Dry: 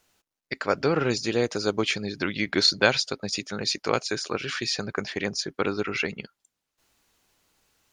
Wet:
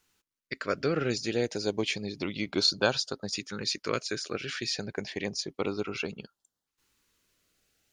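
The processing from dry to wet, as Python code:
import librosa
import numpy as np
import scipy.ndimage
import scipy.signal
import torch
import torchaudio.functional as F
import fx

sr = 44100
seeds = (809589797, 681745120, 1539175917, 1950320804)

y = fx.filter_lfo_notch(x, sr, shape='saw_up', hz=0.3, low_hz=620.0, high_hz=2500.0, q=1.6)
y = y * librosa.db_to_amplitude(-4.0)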